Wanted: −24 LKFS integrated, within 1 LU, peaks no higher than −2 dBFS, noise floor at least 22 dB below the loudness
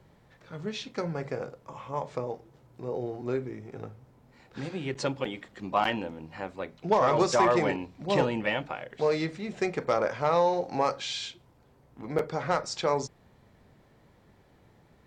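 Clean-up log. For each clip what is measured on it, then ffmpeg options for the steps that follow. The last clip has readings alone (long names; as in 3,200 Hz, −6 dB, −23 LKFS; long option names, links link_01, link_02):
integrated loudness −29.5 LKFS; sample peak −13.5 dBFS; target loudness −24.0 LKFS
→ -af "volume=5.5dB"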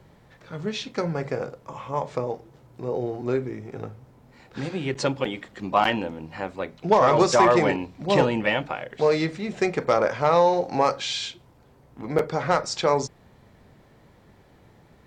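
integrated loudness −24.0 LKFS; sample peak −8.0 dBFS; background noise floor −55 dBFS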